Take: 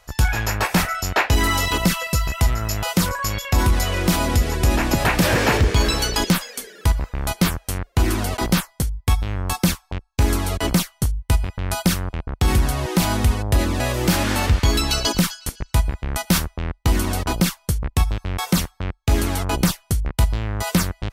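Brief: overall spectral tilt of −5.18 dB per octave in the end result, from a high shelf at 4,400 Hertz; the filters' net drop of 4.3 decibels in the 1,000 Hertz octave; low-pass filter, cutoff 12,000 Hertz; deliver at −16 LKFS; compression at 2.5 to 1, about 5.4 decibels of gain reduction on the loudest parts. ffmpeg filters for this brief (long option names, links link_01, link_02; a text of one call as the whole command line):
ffmpeg -i in.wav -af "lowpass=12000,equalizer=frequency=1000:width_type=o:gain=-5,highshelf=frequency=4400:gain=-7,acompressor=threshold=-21dB:ratio=2.5,volume=10dB" out.wav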